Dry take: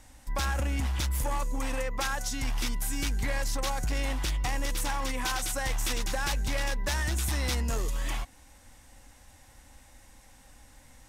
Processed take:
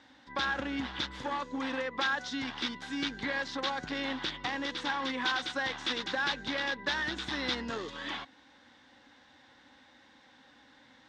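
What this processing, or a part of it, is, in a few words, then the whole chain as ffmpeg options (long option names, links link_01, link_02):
kitchen radio: -af "highpass=230,equalizer=frequency=270:width_type=q:width=4:gain=5,equalizer=frequency=660:width_type=q:width=4:gain=-5,equalizer=frequency=1600:width_type=q:width=4:gain=5,equalizer=frequency=2500:width_type=q:width=4:gain=-4,equalizer=frequency=3600:width_type=q:width=4:gain=7,lowpass=frequency=4400:width=0.5412,lowpass=frequency=4400:width=1.3066"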